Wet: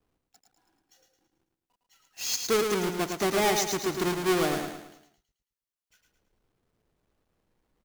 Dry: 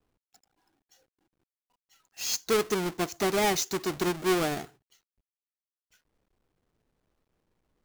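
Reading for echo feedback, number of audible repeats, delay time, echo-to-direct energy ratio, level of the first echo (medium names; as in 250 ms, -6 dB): 43%, 5, 109 ms, -4.5 dB, -5.5 dB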